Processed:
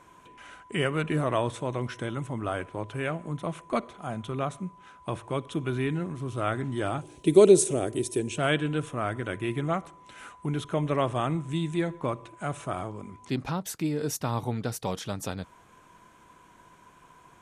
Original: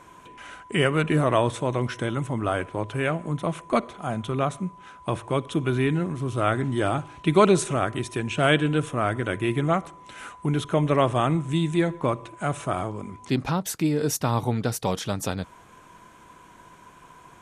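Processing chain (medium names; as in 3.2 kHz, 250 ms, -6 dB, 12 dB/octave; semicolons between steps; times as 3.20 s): 7.01–8.38 s: FFT filter 190 Hz 0 dB, 410 Hz +10 dB, 1.2 kHz -11 dB, 9.7 kHz +12 dB; trim -5.5 dB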